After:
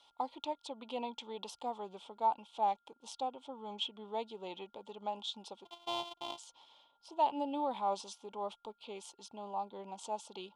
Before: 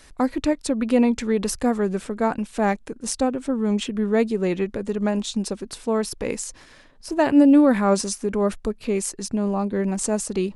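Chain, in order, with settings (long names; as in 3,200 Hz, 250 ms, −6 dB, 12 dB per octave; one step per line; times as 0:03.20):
0:05.65–0:06.38: samples sorted by size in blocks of 128 samples
steady tone 1,400 Hz −51 dBFS
pair of resonant band-passes 1,700 Hz, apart 1.9 octaves
level −1.5 dB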